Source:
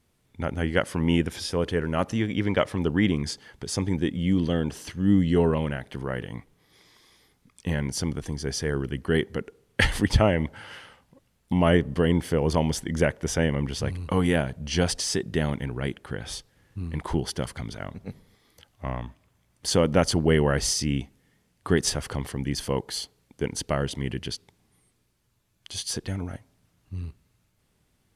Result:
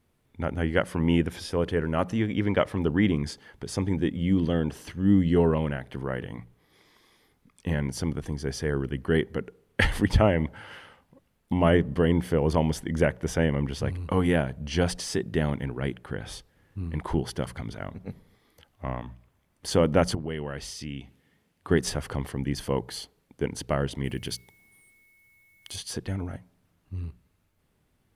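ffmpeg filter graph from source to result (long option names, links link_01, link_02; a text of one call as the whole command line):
ffmpeg -i in.wav -filter_complex "[0:a]asettb=1/sr,asplit=3[link_01][link_02][link_03];[link_01]atrim=end=20.154[link_04];[link_02]atrim=start=20.15:end=21.71,asetpts=PTS-STARTPTS,afade=type=in:duration=0.004:curve=qsin,afade=type=out:start_time=1.556:duration=0.004:curve=qsin,highpass=46,adynamicequalizer=threshold=0.00562:dfrequency=3100:dqfactor=1.1:tfrequency=3100:tqfactor=1.1:attack=5:release=100:ratio=0.375:range=3.5:mode=boostabove:tftype=bell,acompressor=threshold=-38dB:ratio=2:attack=3.2:release=140:knee=1:detection=peak[link_05];[link_03]atrim=start=21.706[link_06];[link_04][link_05]acrossfade=duration=0.004:curve1=hsin:curve2=qsin[link_07];[link_07][link_06]acrossfade=duration=0.004:curve1=qsin:curve2=hsin,asettb=1/sr,asplit=3[link_08][link_09][link_10];[link_08]atrim=end=24.044[link_11];[link_09]atrim=start=24.04:end=25.76,asetpts=PTS-STARTPTS,afade=type=in:duration=0.004:curve=qsin,afade=type=out:start_time=1.716:duration=0.004:curve=qsin,aemphasis=mode=production:type=50fm,aeval=exprs='val(0)+0.00141*sin(2*PI*2200*n/s)':channel_layout=same[link_12];[link_10]atrim=start=25.756[link_13];[link_11][link_12]acrossfade=duration=0.004:curve1=hsin:curve2=qsin[link_14];[link_14][link_13]acrossfade=duration=0.004:curve1=qsin:curve2=hsin,equalizer=frequency=6400:width=0.56:gain=-7,bandreject=frequency=60:width_type=h:width=6,bandreject=frequency=120:width_type=h:width=6,bandreject=frequency=180:width_type=h:width=6" out.wav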